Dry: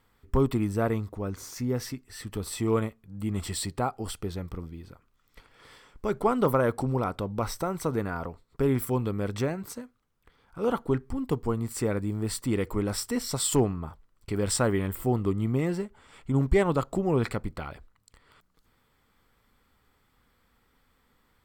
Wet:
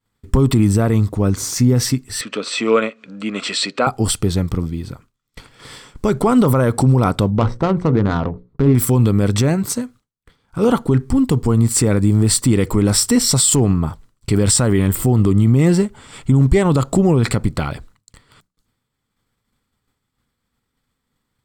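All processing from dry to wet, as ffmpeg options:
ffmpeg -i in.wav -filter_complex "[0:a]asettb=1/sr,asplit=3[link_01][link_02][link_03];[link_01]atrim=end=2.214[link_04];[link_02]atrim=start=2.21:end=3.87,asetpts=PTS-STARTPTS,afade=type=in:duration=0.004:curve=qsin,afade=type=out:start_time=1.656:duration=0.004:curve=qsin,highpass=frequency=280:width=0.5412,highpass=frequency=280:width=1.3066,equalizer=frequency=350:width_type=q:width=4:gain=-9,equalizer=frequency=550:width_type=q:width=4:gain=6,equalizer=frequency=840:width_type=q:width=4:gain=-8,equalizer=frequency=1400:width_type=q:width=4:gain=7,equalizer=frequency=2500:width_type=q:width=4:gain=9,equalizer=frequency=5200:width_type=q:width=4:gain=-4,lowpass=frequency=5700:width=0.5412,lowpass=frequency=5700:width=1.3066,acompressor=mode=upward:threshold=-44dB:ratio=2.5:attack=3.2:release=140:knee=2.83:detection=peak[link_05];[link_03]atrim=start=3.866[link_06];[link_04][link_05]acrossfade=duration=0.004:curve1=hsin:curve2=qsin[link_07];[link_07][link_06]acrossfade=duration=0.004:curve1=qsin:curve2=hsin,asettb=1/sr,asplit=3[link_08][link_09][link_10];[link_08]atrim=end=7.304[link_11];[link_09]atrim=start=7.3:end=8.75,asetpts=PTS-STARTPTS,afade=type=in:duration=0.004:curve=qsin,afade=type=out:start_time=1.446:duration=0.004:curve=qsin,bandreject=frequency=60:width_type=h:width=6,bandreject=frequency=120:width_type=h:width=6,bandreject=frequency=180:width_type=h:width=6,bandreject=frequency=240:width_type=h:width=6,bandreject=frequency=300:width_type=h:width=6,bandreject=frequency=360:width_type=h:width=6,bandreject=frequency=420:width_type=h:width=6,bandreject=frequency=480:width_type=h:width=6,bandreject=frequency=540:width_type=h:width=6,adynamicsmooth=sensitivity=2:basefreq=850[link_12];[link_10]atrim=start=8.746[link_13];[link_11][link_12]acrossfade=duration=0.004:curve1=hsin:curve2=qsin[link_14];[link_14][link_13]acrossfade=duration=0.004:curve1=qsin:curve2=hsin,agate=range=-33dB:threshold=-53dB:ratio=3:detection=peak,equalizer=frequency=125:width_type=o:width=1:gain=8,equalizer=frequency=250:width_type=o:width=1:gain=4,equalizer=frequency=4000:width_type=o:width=1:gain=4,equalizer=frequency=8000:width_type=o:width=1:gain=8,alimiter=level_in=16dB:limit=-1dB:release=50:level=0:latency=1,volume=-4dB" out.wav

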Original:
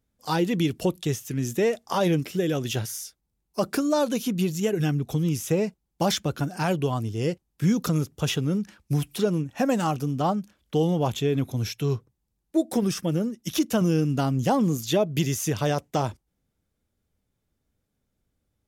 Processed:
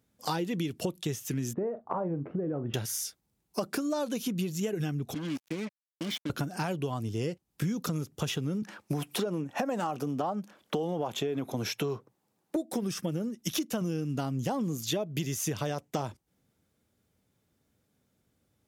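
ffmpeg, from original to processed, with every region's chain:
ffmpeg -i in.wav -filter_complex "[0:a]asettb=1/sr,asplit=3[link_01][link_02][link_03];[link_01]atrim=end=1.534[link_04];[link_02]atrim=start=1.53:end=2.74,asetpts=PTS-STARTPTS,afade=type=in:duration=0.004:curve=qsin,afade=type=out:start_time=1.206:duration=0.004:curve=qsin,lowpass=frequency=1200:width=0.5412,lowpass=frequency=1200:width=1.3066,acompressor=threshold=-30dB:ratio=2:attack=3.2:release=140:knee=1:detection=peak,asplit=2[link_05][link_06];[link_06]adelay=42,volume=-13.5dB[link_07];[link_05][link_07]amix=inputs=2:normalize=0,atrim=end_sample=53361[link_08];[link_03]atrim=start=2.736[link_09];[link_04][link_08]acrossfade=duration=0.004:curve1=hsin:curve2=qsin[link_10];[link_10][link_09]acrossfade=duration=0.004:curve1=qsin:curve2=hsin,asettb=1/sr,asplit=3[link_11][link_12][link_13];[link_11]atrim=end=5.144[link_14];[link_12]atrim=start=5.14:end=6.3,asetpts=PTS-STARTPTS,afade=type=in:duration=0.004:curve=qsin,afade=type=out:start_time=1.156:duration=0.004:curve=qsin,asplit=3[link_15][link_16][link_17];[link_15]bandpass=frequency=270:width_type=q:width=8,volume=0dB[link_18];[link_16]bandpass=frequency=2290:width_type=q:width=8,volume=-6dB[link_19];[link_17]bandpass=frequency=3010:width_type=q:width=8,volume=-9dB[link_20];[link_18][link_19][link_20]amix=inputs=3:normalize=0,highshelf=frequency=4400:gain=5.5,acrusher=bits=6:mix=0:aa=0.5[link_21];[link_13]atrim=start=6.296[link_22];[link_14][link_21]acrossfade=duration=0.004:curve1=hsin:curve2=qsin[link_23];[link_23][link_22]acrossfade=duration=0.004:curve1=qsin:curve2=hsin,asettb=1/sr,asplit=3[link_24][link_25][link_26];[link_24]atrim=end=8.624[link_27];[link_25]atrim=start=8.62:end=12.56,asetpts=PTS-STARTPTS,afade=type=in:duration=0.004:curve=qsin,afade=type=out:start_time=3.936:duration=0.004:curve=qsin,highpass=150,equalizer=frequency=770:width_type=o:width=2.6:gain=9.5,acompressor=threshold=-21dB:ratio=2.5:attack=3.2:release=140:knee=1:detection=peak[link_28];[link_26]atrim=start=12.556[link_29];[link_27][link_28]acrossfade=duration=0.004:curve1=hsin:curve2=qsin[link_30];[link_30][link_29]acrossfade=duration=0.004:curve1=qsin:curve2=hsin,highpass=100,acompressor=threshold=-35dB:ratio=6,volume=5.5dB" out.wav

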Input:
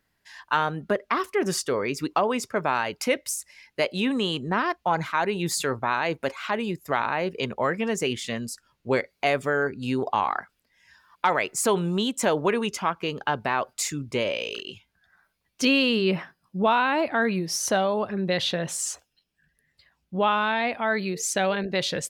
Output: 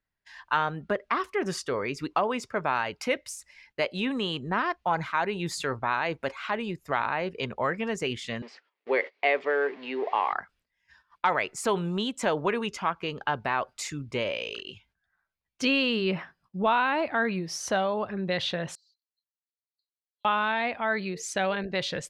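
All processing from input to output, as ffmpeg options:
ffmpeg -i in.wav -filter_complex "[0:a]asettb=1/sr,asplit=3[link_01][link_02][link_03];[link_01]atrim=end=8.424[link_04];[link_02]atrim=start=8.42:end=10.33,asetpts=PTS-STARTPTS,afade=type=in:duration=0.004:curve=qsin,afade=type=out:start_time=1.906:duration=0.004:curve=qsin,aeval=exprs='val(0)+0.5*0.0158*sgn(val(0))':channel_layout=same,agate=range=-25dB:threshold=-39dB:ratio=16:release=100:detection=peak,highpass=frequency=320:width=0.5412,highpass=frequency=320:width=1.3066,equalizer=frequency=440:width_type=q:width=4:gain=4,equalizer=frequency=1400:width_type=q:width=4:gain=-6,equalizer=frequency=2000:width_type=q:width=4:gain=6,equalizer=frequency=3700:width_type=q:width=4:gain=-3,lowpass=frequency=4100:width=0.5412,lowpass=frequency=4100:width=1.3066[link_05];[link_03]atrim=start=10.326[link_06];[link_04][link_05]acrossfade=duration=0.004:curve1=hsin:curve2=qsin[link_07];[link_07][link_06]acrossfade=duration=0.004:curve1=qsin:curve2=hsin,asettb=1/sr,asplit=3[link_08][link_09][link_10];[link_08]atrim=end=18.754[link_11];[link_09]atrim=start=18.75:end=20.25,asetpts=PTS-STARTPTS,afade=type=in:duration=0.004:curve=qsin,afade=type=out:start_time=1.496:duration=0.004:curve=qsin,asuperpass=centerf=4300:order=4:qfactor=6.4,acompressor=threshold=-59dB:ratio=10:attack=3.2:release=140:knee=1:detection=peak[link_12];[link_10]atrim=start=20.246[link_13];[link_11][link_12]acrossfade=duration=0.004:curve1=hsin:curve2=qsin[link_14];[link_14][link_13]acrossfade=duration=0.004:curve1=qsin:curve2=hsin,aemphasis=mode=reproduction:type=bsi,agate=range=-12dB:threshold=-57dB:ratio=16:detection=peak,lowshelf=frequency=450:gain=-12" out.wav

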